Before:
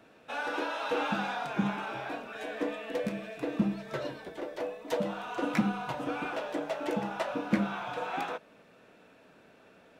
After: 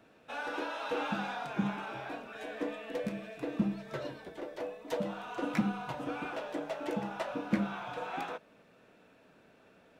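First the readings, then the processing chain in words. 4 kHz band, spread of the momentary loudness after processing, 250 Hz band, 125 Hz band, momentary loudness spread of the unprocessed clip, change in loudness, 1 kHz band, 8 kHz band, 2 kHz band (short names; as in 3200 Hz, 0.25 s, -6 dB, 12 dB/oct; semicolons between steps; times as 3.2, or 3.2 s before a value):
-4.0 dB, 9 LU, -2.5 dB, -2.0 dB, 8 LU, -3.0 dB, -4.0 dB, -4.0 dB, -4.0 dB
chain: low shelf 190 Hz +3.5 dB; gain -4 dB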